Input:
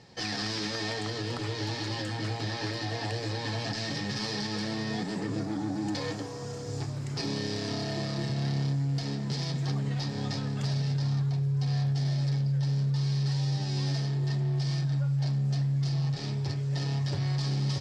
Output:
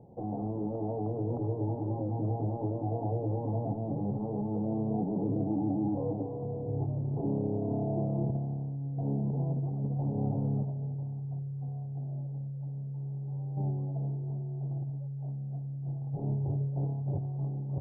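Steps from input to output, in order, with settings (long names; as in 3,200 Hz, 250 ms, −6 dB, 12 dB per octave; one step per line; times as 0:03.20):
Butterworth low-pass 820 Hz 48 dB per octave
compressor whose output falls as the input rises −31 dBFS, ratio −0.5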